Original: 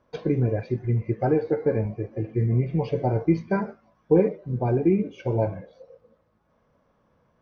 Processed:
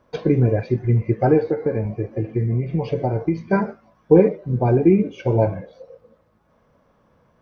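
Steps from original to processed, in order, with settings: 1.42–3.53 s: compression 4:1, threshold -24 dBFS, peak gain reduction 8.5 dB; trim +6 dB

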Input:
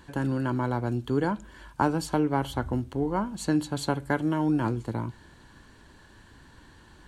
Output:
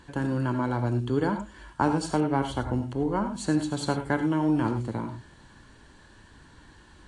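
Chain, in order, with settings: gated-style reverb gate 120 ms rising, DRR 7.5 dB; AAC 48 kbps 22.05 kHz

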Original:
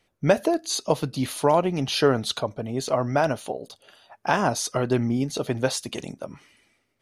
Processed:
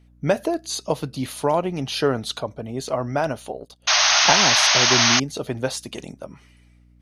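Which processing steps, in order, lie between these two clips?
hum 60 Hz, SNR 27 dB; 3.60–4.33 s: transient shaper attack +6 dB, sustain -10 dB; 3.87–5.20 s: painted sound noise 590–6600 Hz -16 dBFS; trim -1 dB

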